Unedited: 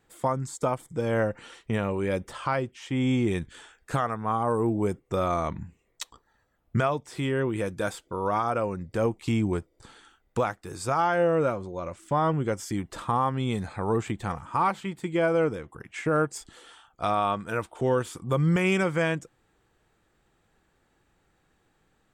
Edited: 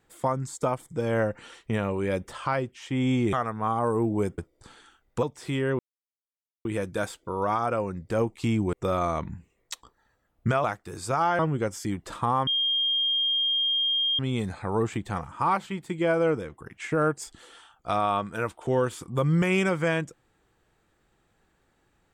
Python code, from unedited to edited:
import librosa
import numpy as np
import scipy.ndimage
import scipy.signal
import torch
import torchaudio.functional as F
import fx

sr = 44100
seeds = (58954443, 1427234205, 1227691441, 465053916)

y = fx.edit(x, sr, fx.cut(start_s=3.33, length_s=0.64),
    fx.swap(start_s=5.02, length_s=1.91, other_s=9.57, other_length_s=0.85),
    fx.insert_silence(at_s=7.49, length_s=0.86),
    fx.cut(start_s=11.17, length_s=1.08),
    fx.insert_tone(at_s=13.33, length_s=1.72, hz=3220.0, db=-22.0), tone=tone)